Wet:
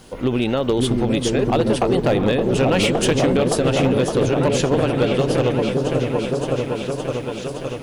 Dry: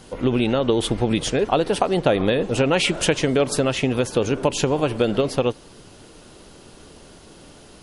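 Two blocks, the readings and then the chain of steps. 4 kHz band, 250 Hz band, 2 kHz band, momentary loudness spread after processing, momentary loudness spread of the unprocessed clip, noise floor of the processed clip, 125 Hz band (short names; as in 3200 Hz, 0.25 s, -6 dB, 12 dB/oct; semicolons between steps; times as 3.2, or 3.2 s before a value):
0.0 dB, +3.5 dB, +0.5 dB, 7 LU, 3 LU, -30 dBFS, +5.0 dB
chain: repeats that get brighter 0.566 s, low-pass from 400 Hz, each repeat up 1 oct, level 0 dB; hard clip -11 dBFS, distortion -18 dB; bit-crush 10-bit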